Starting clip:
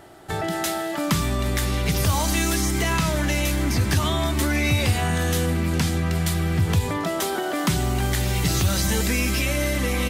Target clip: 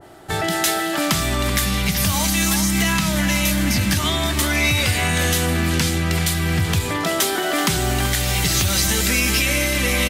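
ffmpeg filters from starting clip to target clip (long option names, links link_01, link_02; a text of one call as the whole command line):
ffmpeg -i in.wav -filter_complex "[0:a]asettb=1/sr,asplit=3[link_01][link_02][link_03];[link_01]atrim=end=1.544[link_04];[link_02]atrim=start=1.54:end=3.97,asetpts=PTS-STARTPTS,afade=type=in:duration=0.004:curve=qsin,afade=type=out:start_time=2.426:duration=0.004:curve=qsin,equalizer=frequency=200:width_type=o:width=0.33:gain=10,equalizer=frequency=400:width_type=o:width=0.33:gain=-9,equalizer=frequency=12500:width_type=o:width=0.33:gain=3[link_05];[link_03]atrim=start=3.966[link_06];[link_04][link_05]acrossfade=duration=0.004:curve1=hsin:curve2=qsin[link_07];[link_07][link_06]acrossfade=duration=0.004:curve1=qsin:curve2=hsin,alimiter=limit=-15dB:level=0:latency=1:release=342,asplit=2[link_08][link_09];[link_09]adelay=380,highpass=300,lowpass=3400,asoftclip=type=hard:threshold=-23dB,volume=-6dB[link_10];[link_08][link_10]amix=inputs=2:normalize=0,adynamicequalizer=threshold=0.00631:dfrequency=1500:dqfactor=0.7:tfrequency=1500:tqfactor=0.7:attack=5:release=100:ratio=0.375:range=3.5:mode=boostabove:tftype=highshelf,volume=3dB" out.wav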